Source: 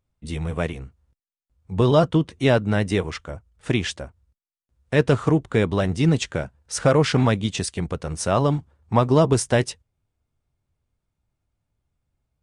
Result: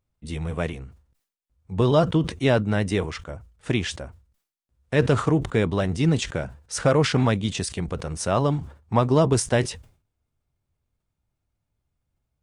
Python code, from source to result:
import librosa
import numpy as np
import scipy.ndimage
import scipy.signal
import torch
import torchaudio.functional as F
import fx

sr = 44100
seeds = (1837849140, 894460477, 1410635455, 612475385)

y = fx.sustainer(x, sr, db_per_s=130.0)
y = F.gain(torch.from_numpy(y), -2.0).numpy()